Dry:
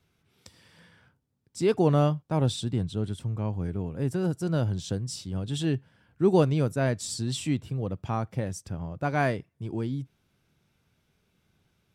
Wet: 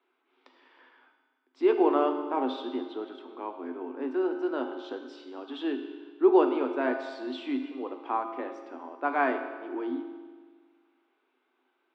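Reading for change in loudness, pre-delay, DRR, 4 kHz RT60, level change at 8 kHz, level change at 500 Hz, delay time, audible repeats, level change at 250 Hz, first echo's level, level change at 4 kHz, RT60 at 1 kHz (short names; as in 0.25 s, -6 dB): -1.0 dB, 3 ms, 4.5 dB, 1.6 s, under -25 dB, +1.0 dB, none, none, -1.0 dB, none, -7.0 dB, 1.6 s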